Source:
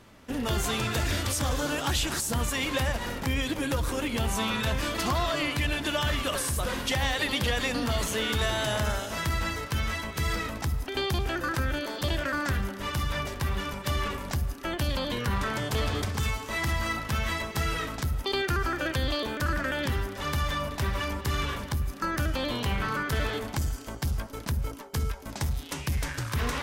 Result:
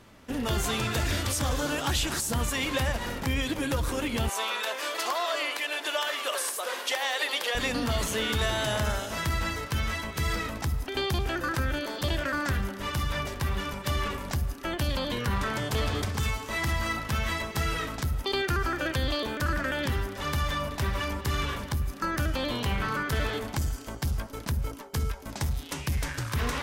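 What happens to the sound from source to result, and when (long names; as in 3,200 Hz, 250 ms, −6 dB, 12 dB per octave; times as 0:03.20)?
0:04.29–0:07.55: high-pass filter 430 Hz 24 dB per octave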